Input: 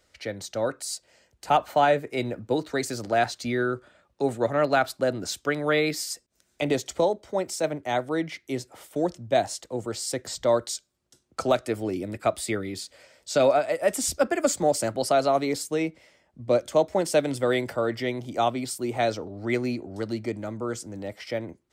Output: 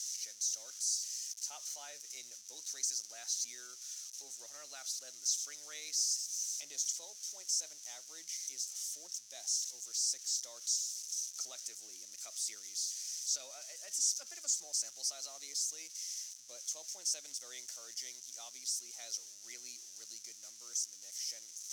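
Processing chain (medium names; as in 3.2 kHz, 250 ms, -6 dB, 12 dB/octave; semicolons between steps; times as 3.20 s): zero-crossing glitches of -24.5 dBFS; in parallel at -1.5 dB: peak limiter -18.5 dBFS, peak gain reduction 8.5 dB; on the sum: band-pass filter 6 kHz, Q 7.6; trim -1.5 dB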